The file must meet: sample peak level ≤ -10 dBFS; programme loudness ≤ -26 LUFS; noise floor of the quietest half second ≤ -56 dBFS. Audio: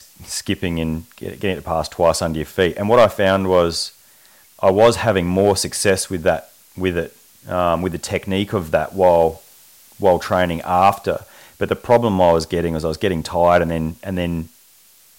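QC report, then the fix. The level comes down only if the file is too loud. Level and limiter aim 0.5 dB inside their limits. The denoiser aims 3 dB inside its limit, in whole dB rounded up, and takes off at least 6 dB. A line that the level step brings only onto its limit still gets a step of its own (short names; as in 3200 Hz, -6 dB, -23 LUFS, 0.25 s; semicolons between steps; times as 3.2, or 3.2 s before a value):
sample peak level -3.0 dBFS: fail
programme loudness -18.5 LUFS: fail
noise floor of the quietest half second -50 dBFS: fail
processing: gain -8 dB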